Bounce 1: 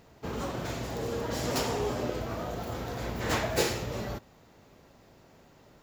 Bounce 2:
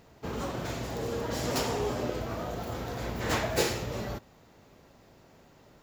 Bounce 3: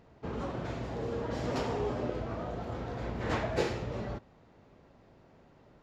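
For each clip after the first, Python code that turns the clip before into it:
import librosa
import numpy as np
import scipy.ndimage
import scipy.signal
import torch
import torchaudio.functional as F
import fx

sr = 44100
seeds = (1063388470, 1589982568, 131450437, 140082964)

y1 = x
y2 = fx.spacing_loss(y1, sr, db_at_10k=21)
y2 = y2 * librosa.db_to_amplitude(-1.0)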